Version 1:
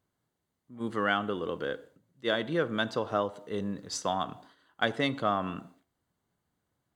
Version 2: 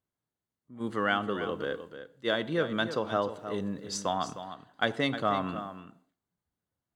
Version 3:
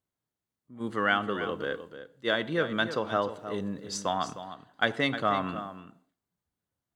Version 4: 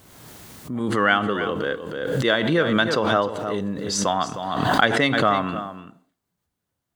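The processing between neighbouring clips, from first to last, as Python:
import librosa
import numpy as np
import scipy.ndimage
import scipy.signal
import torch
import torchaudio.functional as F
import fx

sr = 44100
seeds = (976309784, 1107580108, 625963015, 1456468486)

y1 = fx.noise_reduce_blind(x, sr, reduce_db=10)
y1 = y1 + 10.0 ** (-11.0 / 20.0) * np.pad(y1, (int(309 * sr / 1000.0), 0))[:len(y1)]
y2 = fx.dynamic_eq(y1, sr, hz=1900.0, q=0.95, threshold_db=-40.0, ratio=4.0, max_db=4)
y3 = fx.pre_swell(y2, sr, db_per_s=34.0)
y3 = y3 * 10.0 ** (6.5 / 20.0)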